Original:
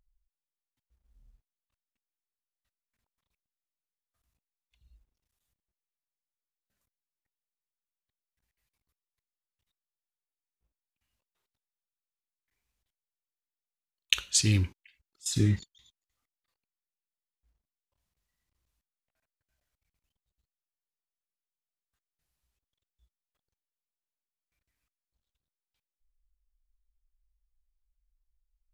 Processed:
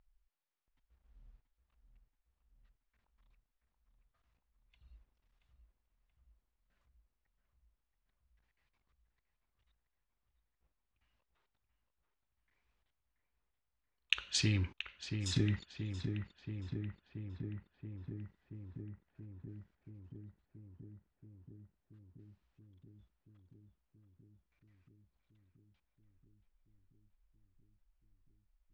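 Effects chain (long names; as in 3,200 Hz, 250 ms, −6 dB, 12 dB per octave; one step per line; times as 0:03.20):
low-pass filter 3,600 Hz 12 dB per octave
parametric band 1,200 Hz +5 dB 2.6 octaves
downward compressor 6 to 1, threshold −30 dBFS, peak gain reduction 13 dB
feedback echo with a low-pass in the loop 679 ms, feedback 78%, low-pass 2,100 Hz, level −6.5 dB
level +1 dB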